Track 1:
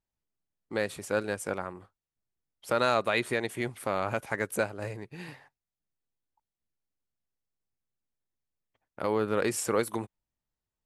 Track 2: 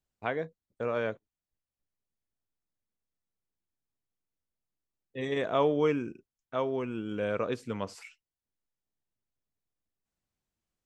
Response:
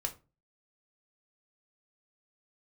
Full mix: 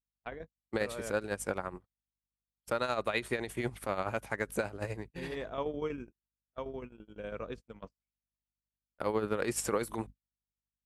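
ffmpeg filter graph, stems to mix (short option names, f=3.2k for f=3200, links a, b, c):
-filter_complex "[0:a]aeval=exprs='val(0)+0.00282*(sin(2*PI*50*n/s)+sin(2*PI*2*50*n/s)/2+sin(2*PI*3*50*n/s)/3+sin(2*PI*4*50*n/s)/4+sin(2*PI*5*50*n/s)/5)':c=same,tremolo=f=12:d=0.64,volume=2.5dB,asplit=2[a][b];[1:a]volume=-8.5dB[c];[b]apad=whole_len=478491[d];[c][d]sidechaingate=range=-33dB:threshold=-53dB:ratio=16:detection=peak[e];[a][e]amix=inputs=2:normalize=0,agate=range=-45dB:threshold=-42dB:ratio=16:detection=peak,alimiter=limit=-18dB:level=0:latency=1:release=410"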